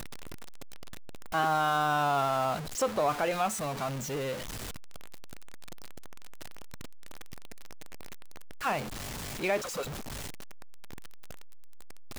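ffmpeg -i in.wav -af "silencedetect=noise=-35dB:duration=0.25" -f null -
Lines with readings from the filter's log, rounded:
silence_start: 0.00
silence_end: 1.34 | silence_duration: 1.34
silence_start: 4.35
silence_end: 8.62 | silence_duration: 4.27
silence_start: 8.82
silence_end: 9.41 | silence_duration: 0.59
silence_start: 9.83
silence_end: 12.19 | silence_duration: 2.36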